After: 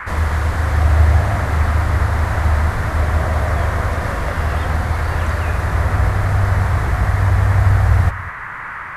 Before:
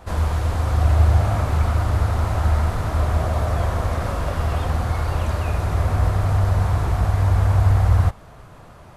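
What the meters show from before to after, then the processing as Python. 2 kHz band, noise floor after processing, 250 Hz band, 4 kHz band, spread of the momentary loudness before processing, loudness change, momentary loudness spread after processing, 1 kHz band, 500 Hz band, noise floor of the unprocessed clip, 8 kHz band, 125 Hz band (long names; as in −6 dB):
+10.5 dB, −29 dBFS, +2.5 dB, +3.0 dB, 6 LU, +3.0 dB, 6 LU, +4.5 dB, +2.5 dB, −44 dBFS, +2.5 dB, +2.5 dB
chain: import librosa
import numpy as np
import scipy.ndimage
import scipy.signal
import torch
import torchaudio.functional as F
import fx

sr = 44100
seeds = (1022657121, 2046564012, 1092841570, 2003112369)

y = fx.dmg_noise_band(x, sr, seeds[0], low_hz=920.0, high_hz=2000.0, level_db=-32.0)
y = y + 10.0 ** (-16.0 / 20.0) * np.pad(y, (int(198 * sr / 1000.0), 0))[:len(y)]
y = y * librosa.db_to_amplitude(2.5)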